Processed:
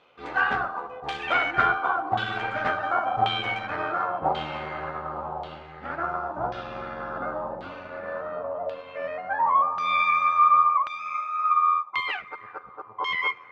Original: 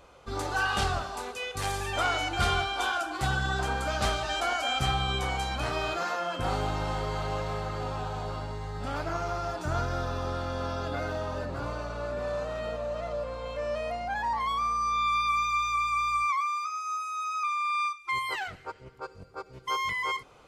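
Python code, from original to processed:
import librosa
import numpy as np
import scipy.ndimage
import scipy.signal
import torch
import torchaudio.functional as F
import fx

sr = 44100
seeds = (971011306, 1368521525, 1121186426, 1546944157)

y = scipy.signal.sosfilt(scipy.signal.butter(2, 170.0, 'highpass', fs=sr, output='sos'), x)
y = fx.echo_diffused(y, sr, ms=561, feedback_pct=68, wet_db=-15)
y = fx.stretch_grains(y, sr, factor=0.66, grain_ms=24.0)
y = fx.filter_lfo_lowpass(y, sr, shape='saw_down', hz=0.92, low_hz=820.0, high_hz=3300.0, q=2.5)
y = fx.upward_expand(y, sr, threshold_db=-40.0, expansion=1.5)
y = y * 10.0 ** (5.5 / 20.0)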